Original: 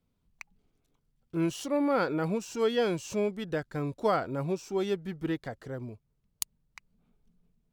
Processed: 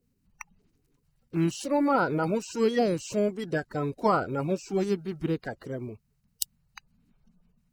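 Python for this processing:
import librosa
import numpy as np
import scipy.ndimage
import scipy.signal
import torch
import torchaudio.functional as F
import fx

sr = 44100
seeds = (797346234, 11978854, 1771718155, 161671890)

y = fx.spec_quant(x, sr, step_db=30)
y = fx.notch(y, sr, hz=3400.0, q=7.7)
y = y * 10.0 ** (3.5 / 20.0)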